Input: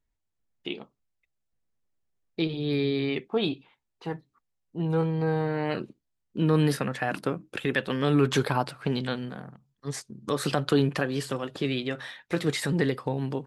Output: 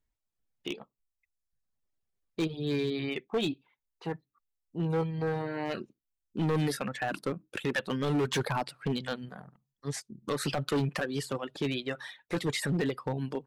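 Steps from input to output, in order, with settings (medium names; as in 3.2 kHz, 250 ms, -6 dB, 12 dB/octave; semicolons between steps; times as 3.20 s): reverb removal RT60 0.89 s; hard clipper -22.5 dBFS, distortion -11 dB; trim -1.5 dB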